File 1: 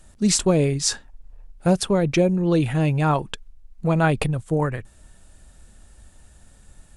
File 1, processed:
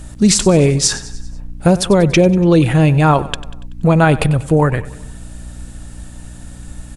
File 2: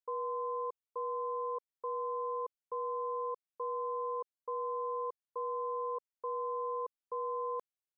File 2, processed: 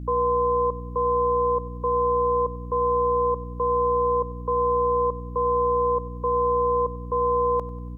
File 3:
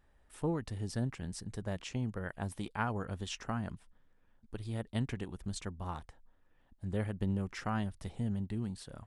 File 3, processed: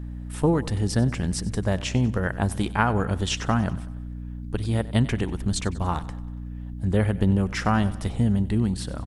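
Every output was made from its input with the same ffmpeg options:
-filter_complex "[0:a]asplit=2[link_01][link_02];[link_02]acompressor=threshold=-30dB:ratio=6,volume=2.5dB[link_03];[link_01][link_03]amix=inputs=2:normalize=0,aeval=exprs='val(0)+0.0112*(sin(2*PI*60*n/s)+sin(2*PI*2*60*n/s)/2+sin(2*PI*3*60*n/s)/3+sin(2*PI*4*60*n/s)/4+sin(2*PI*5*60*n/s)/5)':channel_layout=same,aecho=1:1:95|190|285|380|475:0.126|0.068|0.0367|0.0198|0.0107,alimiter=level_in=7.5dB:limit=-1dB:release=50:level=0:latency=1,volume=-1dB"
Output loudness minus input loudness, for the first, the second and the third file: +8.0, +14.5, +13.5 LU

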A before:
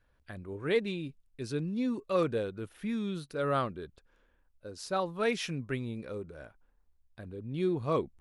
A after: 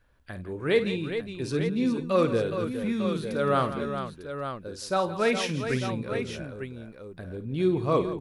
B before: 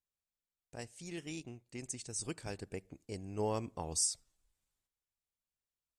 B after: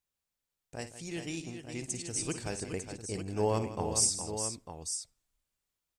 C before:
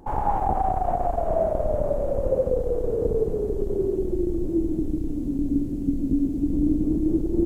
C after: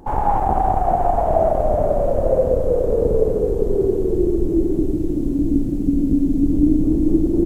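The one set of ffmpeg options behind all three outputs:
-af "aecho=1:1:54|167|414|900:0.266|0.211|0.376|0.355,volume=5dB"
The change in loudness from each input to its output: +5.5, +5.5, +6.0 LU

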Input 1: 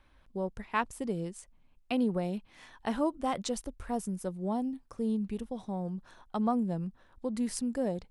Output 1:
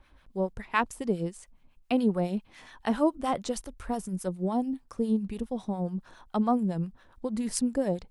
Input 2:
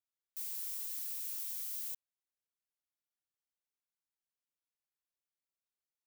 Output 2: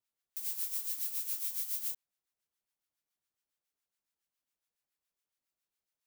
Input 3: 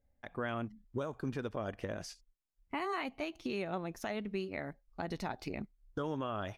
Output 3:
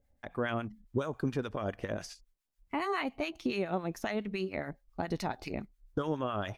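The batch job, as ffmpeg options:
-filter_complex "[0:a]acrossover=split=1000[link_01][link_02];[link_01]aeval=exprs='val(0)*(1-0.7/2+0.7/2*cos(2*PI*7.2*n/s))':channel_layout=same[link_03];[link_02]aeval=exprs='val(0)*(1-0.7/2-0.7/2*cos(2*PI*7.2*n/s))':channel_layout=same[link_04];[link_03][link_04]amix=inputs=2:normalize=0,volume=7dB"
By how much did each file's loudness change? +3.5, +4.0, +4.0 LU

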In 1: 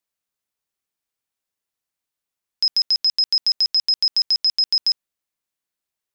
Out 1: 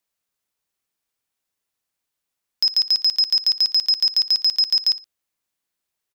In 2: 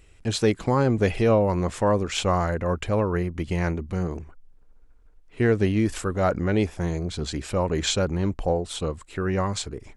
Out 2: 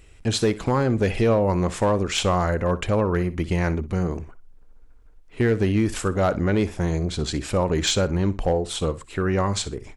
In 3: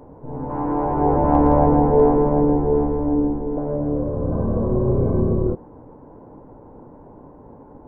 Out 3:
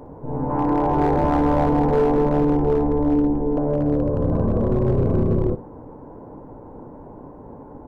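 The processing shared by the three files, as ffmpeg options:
-filter_complex "[0:a]acompressor=threshold=-20dB:ratio=2.5,asoftclip=type=hard:threshold=-16.5dB,asplit=2[link_01][link_02];[link_02]aecho=0:1:61|122:0.15|0.0359[link_03];[link_01][link_03]amix=inputs=2:normalize=0,volume=3.5dB"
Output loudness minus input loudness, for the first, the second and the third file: +0.5, +1.5, −1.0 LU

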